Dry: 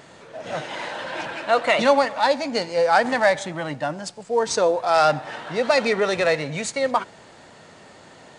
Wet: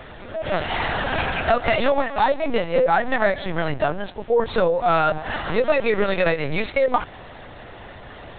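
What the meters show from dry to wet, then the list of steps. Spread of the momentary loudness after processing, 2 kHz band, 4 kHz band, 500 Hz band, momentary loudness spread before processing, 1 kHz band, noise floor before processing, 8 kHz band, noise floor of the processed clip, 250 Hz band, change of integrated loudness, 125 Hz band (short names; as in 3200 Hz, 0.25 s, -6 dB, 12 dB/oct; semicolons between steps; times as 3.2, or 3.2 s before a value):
21 LU, +0.5 dB, -2.5 dB, +0.5 dB, 12 LU, 0.0 dB, -48 dBFS, under -40 dB, -41 dBFS, +1.5 dB, 0.0 dB, +5.0 dB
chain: LPC vocoder at 8 kHz pitch kept; compressor 5:1, threshold -23 dBFS, peak gain reduction 11 dB; gain +7.5 dB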